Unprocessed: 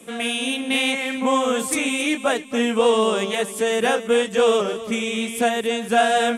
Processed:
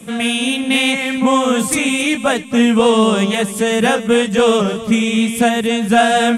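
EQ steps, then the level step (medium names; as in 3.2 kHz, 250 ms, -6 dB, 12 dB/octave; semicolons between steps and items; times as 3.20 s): resonant low shelf 240 Hz +9 dB, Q 1.5; +5.5 dB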